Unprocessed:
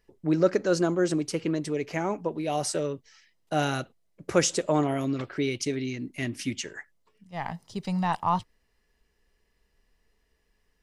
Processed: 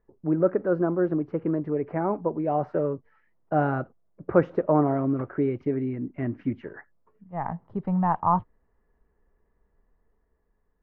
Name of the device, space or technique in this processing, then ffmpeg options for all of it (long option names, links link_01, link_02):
action camera in a waterproof case: -af "lowpass=frequency=1400:width=0.5412,lowpass=frequency=1400:width=1.3066,dynaudnorm=framelen=610:gausssize=5:maxgain=3.5dB" -ar 22050 -c:a aac -b:a 64k